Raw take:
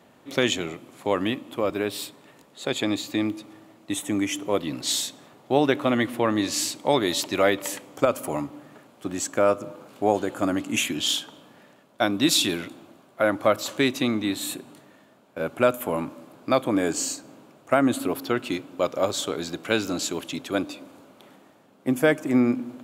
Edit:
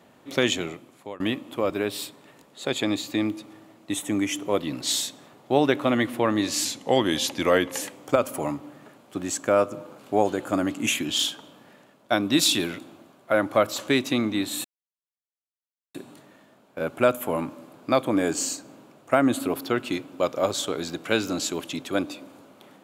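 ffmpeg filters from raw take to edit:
ffmpeg -i in.wav -filter_complex "[0:a]asplit=5[link_01][link_02][link_03][link_04][link_05];[link_01]atrim=end=1.2,asetpts=PTS-STARTPTS,afade=type=out:start_time=0.63:duration=0.57:silence=0.0707946[link_06];[link_02]atrim=start=1.2:end=6.654,asetpts=PTS-STARTPTS,afade=type=in:duration=0.004:curve=hsin:silence=0.0707946[link_07];[link_03]atrim=start=6.65:end=7.71,asetpts=PTS-STARTPTS,asetrate=40131,aresample=44100,atrim=end_sample=51369,asetpts=PTS-STARTPTS[link_08];[link_04]atrim=start=7.706:end=14.54,asetpts=PTS-STARTPTS,afade=type=out:start_time=6.83:duration=0.004:curve=hsin,apad=pad_dur=1.3[link_09];[link_05]atrim=start=14.54,asetpts=PTS-STARTPTS,afade=type=in:duration=0.004:curve=hsin[link_10];[link_06][link_07]concat=n=2:v=0:a=1[link_11];[link_11][link_08]acrossfade=duration=0.004:curve1=hsin:curve2=hsin[link_12];[link_09][link_10]concat=n=2:v=0:a=1[link_13];[link_12][link_13]acrossfade=duration=0.004:curve1=hsin:curve2=hsin" out.wav

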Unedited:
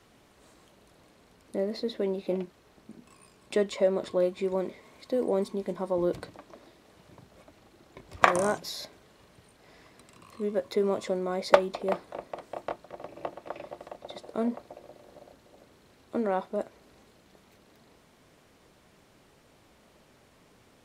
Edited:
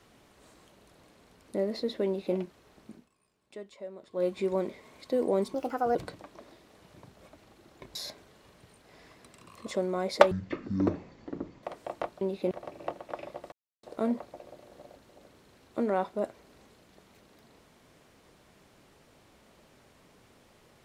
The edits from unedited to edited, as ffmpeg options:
ffmpeg -i in.wav -filter_complex "[0:a]asplit=13[link_01][link_02][link_03][link_04][link_05][link_06][link_07][link_08][link_09][link_10][link_11][link_12][link_13];[link_01]atrim=end=3.09,asetpts=PTS-STARTPTS,afade=type=out:start_time=2.91:duration=0.18:silence=0.133352[link_14];[link_02]atrim=start=3.09:end=4.11,asetpts=PTS-STARTPTS,volume=-17.5dB[link_15];[link_03]atrim=start=4.11:end=5.544,asetpts=PTS-STARTPTS,afade=type=in:duration=0.18:silence=0.133352[link_16];[link_04]atrim=start=5.54:end=6.1,asetpts=PTS-STARTPTS,asetrate=59976,aresample=44100[link_17];[link_05]atrim=start=6.096:end=8.102[link_18];[link_06]atrim=start=8.698:end=10.412[link_19];[link_07]atrim=start=10.988:end=11.644[link_20];[link_08]atrim=start=11.64:end=12.3,asetpts=PTS-STARTPTS,asetrate=22050,aresample=44100[link_21];[link_09]atrim=start=12.296:end=12.882[link_22];[link_10]atrim=start=2.058:end=2.362[link_23];[link_11]atrim=start=12.878:end=13.89,asetpts=PTS-STARTPTS,afade=type=out:start_time=1.008:duration=0.004:curve=hsin[link_24];[link_12]atrim=start=13.89:end=14.2,asetpts=PTS-STARTPTS,volume=0[link_25];[link_13]atrim=start=14.2,asetpts=PTS-STARTPTS,afade=type=in:duration=0.004:curve=hsin[link_26];[link_14][link_15][link_16]concat=n=3:v=0:a=1[link_27];[link_27][link_17]acrossfade=duration=0.004:curve1=hsin:curve2=hsin[link_28];[link_28][link_18]acrossfade=duration=0.004:curve1=hsin:curve2=hsin[link_29];[link_29][link_19]acrossfade=duration=0.004:curve1=hsin:curve2=hsin[link_30];[link_30][link_20]acrossfade=duration=0.004:curve1=hsin:curve2=hsin[link_31];[link_31][link_21]acrossfade=duration=0.004:curve1=hsin:curve2=hsin[link_32];[link_32][link_22]acrossfade=duration=0.004:curve1=hsin:curve2=hsin[link_33];[link_33][link_23]acrossfade=duration=0.004:curve1=hsin:curve2=hsin[link_34];[link_24][link_25][link_26]concat=n=3:v=0:a=1[link_35];[link_34][link_35]acrossfade=duration=0.004:curve1=hsin:curve2=hsin" out.wav

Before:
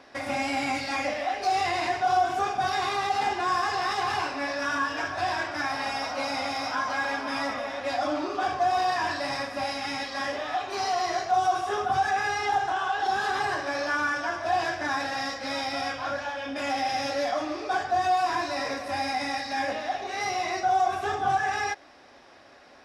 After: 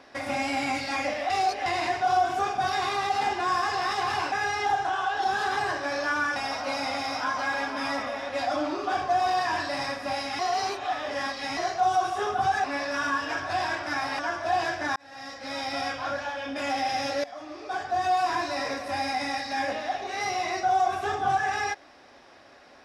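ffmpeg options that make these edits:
ffmpeg -i in.wav -filter_complex "[0:a]asplit=11[link_01][link_02][link_03][link_04][link_05][link_06][link_07][link_08][link_09][link_10][link_11];[link_01]atrim=end=1.302[link_12];[link_02]atrim=start=1.298:end=1.662,asetpts=PTS-STARTPTS,areverse[link_13];[link_03]atrim=start=1.658:end=4.322[link_14];[link_04]atrim=start=12.148:end=14.192[link_15];[link_05]atrim=start=5.868:end=9.902[link_16];[link_06]atrim=start=9.898:end=11.082,asetpts=PTS-STARTPTS,areverse[link_17];[link_07]atrim=start=11.078:end=12.152[link_18];[link_08]atrim=start=4.318:end=5.872[link_19];[link_09]atrim=start=14.188:end=14.96,asetpts=PTS-STARTPTS,afade=type=out:start_time=0.768:duration=0.004:curve=hsin[link_20];[link_10]atrim=start=14.96:end=17.24,asetpts=PTS-STARTPTS,afade=type=in:duration=0.81,afade=type=out:start_time=2.276:duration=0.004:curve=hsin:silence=0.133352[link_21];[link_11]atrim=start=17.24,asetpts=PTS-STARTPTS,afade=type=in:duration=0.94:silence=0.133352[link_22];[link_12][link_13]acrossfade=duration=0.004:curve1=hsin:curve2=hsin[link_23];[link_23][link_14]acrossfade=duration=0.004:curve1=hsin:curve2=hsin[link_24];[link_24][link_15]acrossfade=duration=0.004:curve1=hsin:curve2=hsin[link_25];[link_25][link_16]acrossfade=duration=0.004:curve1=hsin:curve2=hsin[link_26];[link_26][link_17]acrossfade=duration=0.004:curve1=hsin:curve2=hsin[link_27];[link_27][link_18]acrossfade=duration=0.004:curve1=hsin:curve2=hsin[link_28];[link_28][link_19]acrossfade=duration=0.004:curve1=hsin:curve2=hsin[link_29];[link_20][link_21][link_22]concat=n=3:v=0:a=1[link_30];[link_29][link_30]acrossfade=duration=0.004:curve1=hsin:curve2=hsin" out.wav

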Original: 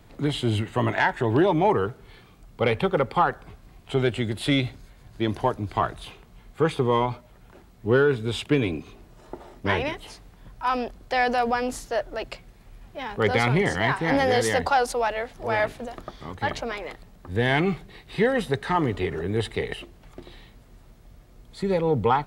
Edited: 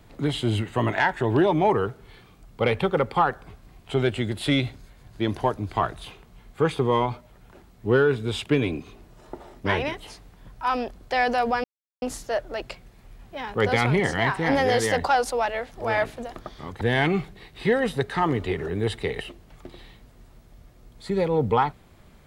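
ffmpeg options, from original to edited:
ffmpeg -i in.wav -filter_complex "[0:a]asplit=3[link_01][link_02][link_03];[link_01]atrim=end=11.64,asetpts=PTS-STARTPTS,afade=type=out:start_time=11.636:duration=0.004:curve=hsin,apad=pad_dur=0.38[link_04];[link_02]atrim=start=11.64:end=16.432,asetpts=PTS-STARTPTS,afade=type=in:duration=0.004:curve=hsin[link_05];[link_03]atrim=start=17.338[link_06];[link_04][link_05]concat=n=2:v=0:a=1[link_07];[link_07][link_06]acrossfade=duration=0.004:curve1=hsin:curve2=hsin" out.wav

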